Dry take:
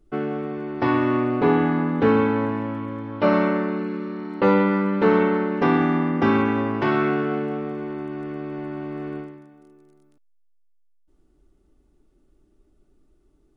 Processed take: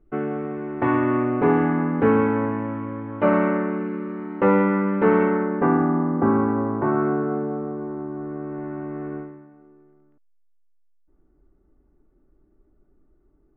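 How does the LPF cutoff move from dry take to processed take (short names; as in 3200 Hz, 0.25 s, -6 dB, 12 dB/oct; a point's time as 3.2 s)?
LPF 24 dB/oct
5.23 s 2300 Hz
5.91 s 1300 Hz
8.17 s 1300 Hz
8.7 s 1800 Hz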